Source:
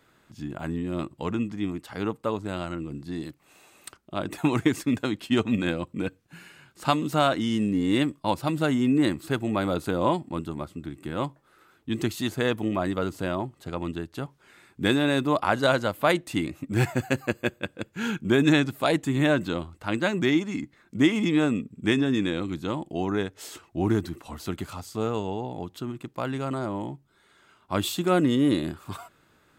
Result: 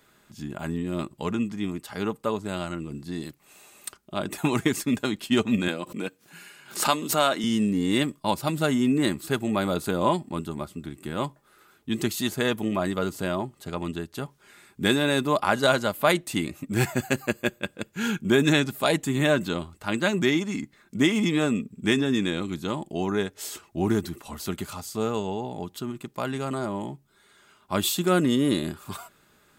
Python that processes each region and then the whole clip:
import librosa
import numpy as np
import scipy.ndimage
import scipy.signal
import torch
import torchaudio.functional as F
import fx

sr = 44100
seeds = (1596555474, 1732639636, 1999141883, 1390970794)

y = fx.chain(x, sr, fx.bessel_highpass(hz=270.0, order=2),
    fx.pre_swell(db_per_s=140.0), at=(5.68, 7.44))
y = fx.high_shelf(y, sr, hz=5100.0, db=8.5)
y = y + 0.3 * np.pad(y, (int(4.9 * sr / 1000.0), 0))[:len(y)]